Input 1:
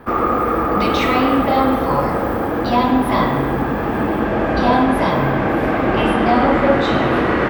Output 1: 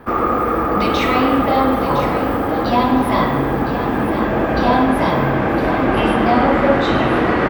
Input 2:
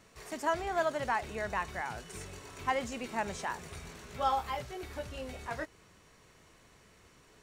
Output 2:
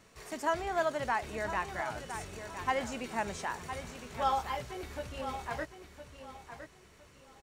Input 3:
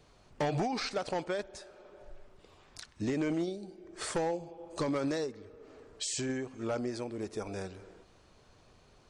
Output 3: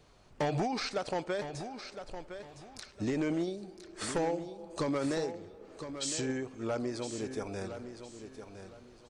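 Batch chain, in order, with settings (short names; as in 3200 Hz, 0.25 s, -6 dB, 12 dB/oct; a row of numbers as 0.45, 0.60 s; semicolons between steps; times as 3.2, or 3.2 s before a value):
feedback echo 1.011 s, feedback 28%, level -10 dB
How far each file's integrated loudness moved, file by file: +0.5, +0.5, -0.5 LU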